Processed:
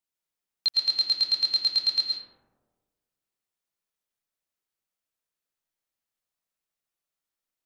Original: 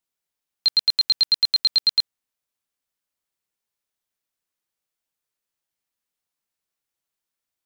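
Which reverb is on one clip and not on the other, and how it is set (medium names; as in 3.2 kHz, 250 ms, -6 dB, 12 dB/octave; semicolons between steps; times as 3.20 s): algorithmic reverb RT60 1.4 s, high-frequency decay 0.3×, pre-delay 80 ms, DRR 1 dB; trim -5.5 dB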